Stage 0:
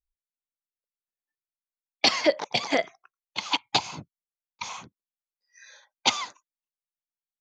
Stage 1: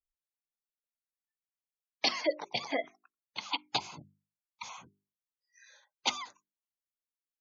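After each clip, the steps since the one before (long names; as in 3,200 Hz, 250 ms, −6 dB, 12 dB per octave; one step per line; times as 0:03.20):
gate on every frequency bin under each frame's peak −20 dB strong
mains-hum notches 50/100/150/200/250/300/350/400 Hz
level −8 dB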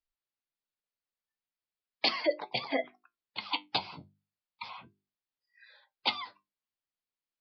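flanger 0.37 Hz, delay 7.4 ms, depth 3.9 ms, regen +65%
downsampling to 11,025 Hz
level +5.5 dB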